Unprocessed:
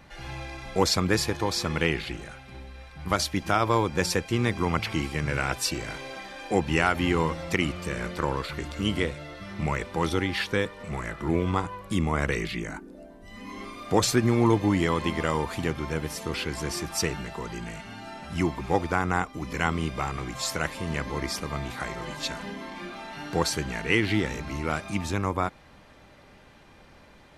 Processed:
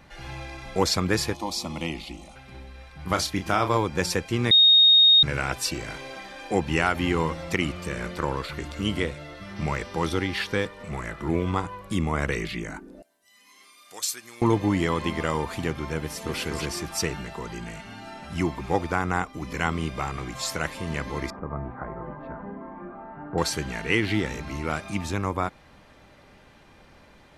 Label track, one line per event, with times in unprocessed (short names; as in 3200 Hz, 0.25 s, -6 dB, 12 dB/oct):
1.340000	2.360000	fixed phaser centre 430 Hz, stages 6
3.020000	3.770000	doubler 33 ms -8 dB
4.510000	5.230000	bleep 3720 Hz -12 dBFS
9.550000	10.660000	buzz 400 Hz, harmonics 15, -47 dBFS -3 dB/oct
13.020000	14.420000	differentiator
15.990000	16.400000	echo throw 0.25 s, feedback 10%, level -3 dB
21.300000	23.380000	LPF 1300 Hz 24 dB/oct